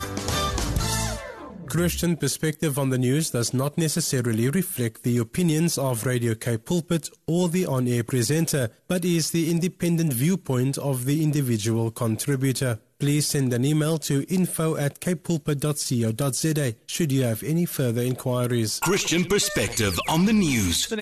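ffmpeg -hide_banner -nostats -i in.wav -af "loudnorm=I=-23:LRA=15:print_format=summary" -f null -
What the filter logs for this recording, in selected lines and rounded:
Input Integrated:    -23.7 LUFS
Input True Peak:     -11.1 dBTP
Input LRA:             2.4 LU
Input Threshold:     -33.8 LUFS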